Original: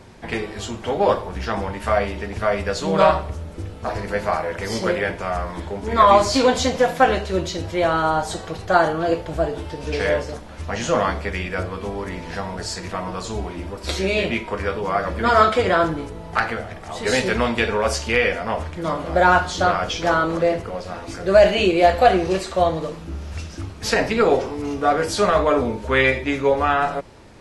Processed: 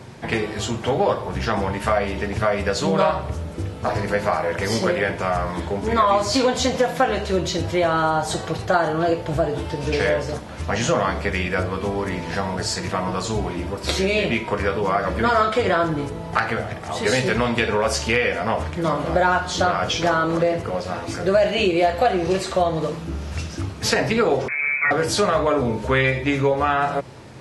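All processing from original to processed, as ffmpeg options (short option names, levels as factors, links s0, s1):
-filter_complex "[0:a]asettb=1/sr,asplit=3[s0][s1][s2];[s0]atrim=end=24.484[s3];[s1]atrim=start=24.48:end=24.91,asetpts=PTS-STARTPTS,afade=t=in:d=0.004:c=qsin,afade=t=out:st=0.426:d=0.004:c=qsin,asoftclip=type=hard:threshold=0.141,lowpass=f=2200:t=q:w=0.5098,lowpass=f=2200:t=q:w=0.6013,lowpass=f=2200:t=q:w=0.9,lowpass=f=2200:t=q:w=2.563,afreqshift=-2600[s4];[s2]atrim=start=24.906[s5];[s3][s4]acrossfade=d=0.004:c1=hsin:c2=qsin[s6];[s6][s5]acrossfade=d=0.004:c1=qsin:c2=hsin,highpass=74,equalizer=f=130:w=5:g=10,acompressor=threshold=0.0891:ratio=3,volume=1.58"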